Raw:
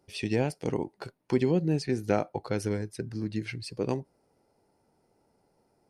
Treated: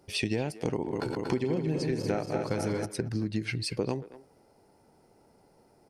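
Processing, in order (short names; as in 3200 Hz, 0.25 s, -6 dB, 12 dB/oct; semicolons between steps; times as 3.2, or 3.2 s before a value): 0.73–2.86 regenerating reverse delay 0.118 s, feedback 78%, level -6 dB; compressor 6:1, threshold -34 dBFS, peak gain reduction 14 dB; speakerphone echo 0.23 s, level -15 dB; gain +7.5 dB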